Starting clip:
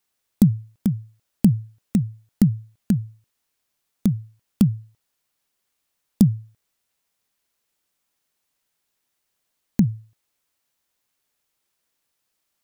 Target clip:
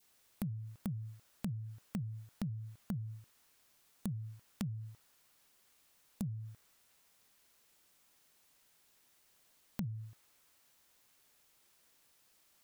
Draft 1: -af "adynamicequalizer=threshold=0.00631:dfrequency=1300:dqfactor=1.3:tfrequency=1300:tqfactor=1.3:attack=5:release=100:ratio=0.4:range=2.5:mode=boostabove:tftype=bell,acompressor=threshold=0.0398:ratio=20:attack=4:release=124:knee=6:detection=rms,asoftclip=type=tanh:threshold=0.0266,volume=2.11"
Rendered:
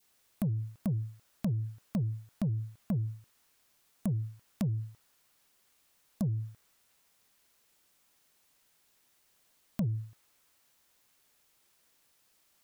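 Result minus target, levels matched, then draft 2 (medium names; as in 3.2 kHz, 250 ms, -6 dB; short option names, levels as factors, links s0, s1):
compression: peak gain reduction -11 dB
-af "adynamicequalizer=threshold=0.00631:dfrequency=1300:dqfactor=1.3:tfrequency=1300:tqfactor=1.3:attack=5:release=100:ratio=0.4:range=2.5:mode=boostabove:tftype=bell,acompressor=threshold=0.0106:ratio=20:attack=4:release=124:knee=6:detection=rms,asoftclip=type=tanh:threshold=0.0266,volume=2.11"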